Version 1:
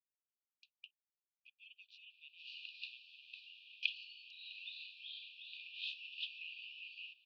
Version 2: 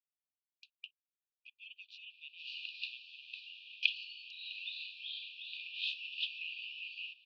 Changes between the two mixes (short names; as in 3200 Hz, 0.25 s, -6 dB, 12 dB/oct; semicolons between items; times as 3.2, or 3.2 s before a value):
speech +7.0 dB; background +6.0 dB